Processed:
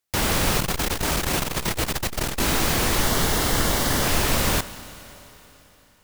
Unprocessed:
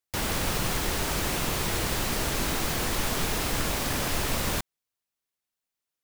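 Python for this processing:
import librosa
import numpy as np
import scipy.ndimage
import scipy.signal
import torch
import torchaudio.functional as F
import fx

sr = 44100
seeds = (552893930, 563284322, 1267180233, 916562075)

y = fx.notch(x, sr, hz=2500.0, q=6.0, at=(3.01, 4.04))
y = fx.rev_schroeder(y, sr, rt60_s=3.6, comb_ms=26, drr_db=14.0)
y = fx.transformer_sat(y, sr, knee_hz=160.0, at=(0.6, 2.4))
y = F.gain(torch.from_numpy(y), 6.5).numpy()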